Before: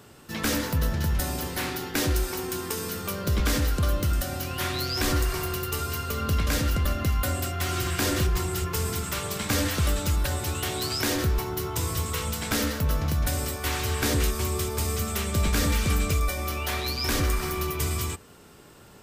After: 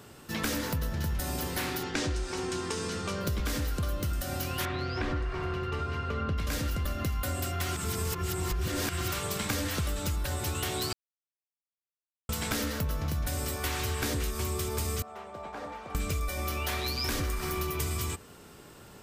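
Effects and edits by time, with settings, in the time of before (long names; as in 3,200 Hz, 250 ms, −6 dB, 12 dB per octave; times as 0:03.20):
0:01.83–0:03.21: low-pass filter 7,900 Hz 24 dB per octave
0:04.65–0:06.38: low-pass filter 2,400 Hz
0:07.76–0:09.12: reverse
0:10.93–0:12.29: silence
0:15.02–0:15.95: resonant band-pass 780 Hz, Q 3
whole clip: downward compressor, threshold −28 dBFS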